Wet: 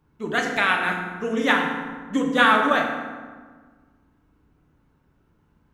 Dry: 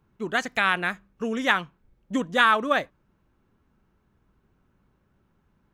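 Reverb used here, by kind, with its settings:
feedback delay network reverb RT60 1.5 s, low-frequency decay 1.45×, high-frequency decay 0.6×, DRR 0 dB

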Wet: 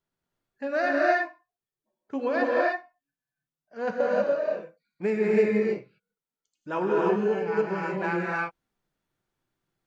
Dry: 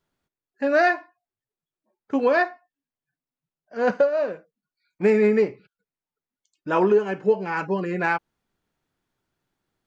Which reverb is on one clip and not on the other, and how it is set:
reverb whose tail is shaped and stops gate 340 ms rising, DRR −4 dB
level −8.5 dB

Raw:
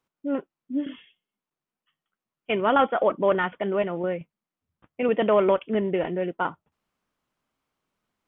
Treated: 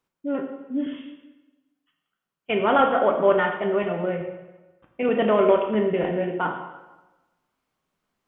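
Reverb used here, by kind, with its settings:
dense smooth reverb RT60 1.1 s, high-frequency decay 0.85×, DRR 2 dB

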